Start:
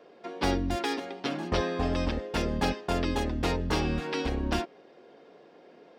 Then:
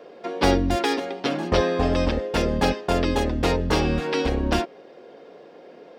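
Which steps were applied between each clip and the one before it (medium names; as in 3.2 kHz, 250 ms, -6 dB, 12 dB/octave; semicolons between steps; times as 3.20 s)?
peaking EQ 520 Hz +4.5 dB 0.51 oct; in parallel at -0.5 dB: gain riding within 5 dB 2 s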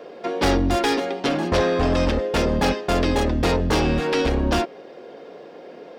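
saturation -19 dBFS, distortion -11 dB; trim +5 dB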